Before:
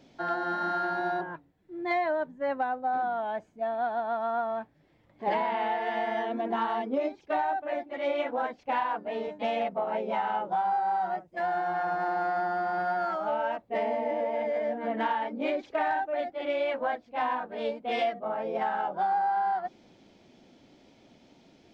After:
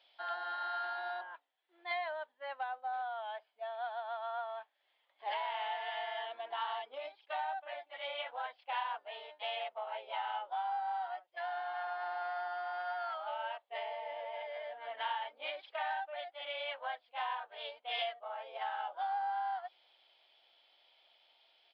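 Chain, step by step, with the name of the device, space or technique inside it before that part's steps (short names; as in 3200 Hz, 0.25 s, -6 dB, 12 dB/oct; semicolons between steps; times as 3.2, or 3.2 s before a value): musical greeting card (downsampling 11025 Hz; HPF 690 Hz 24 dB/oct; bell 3200 Hz +11.5 dB 0.53 oct); gain -8 dB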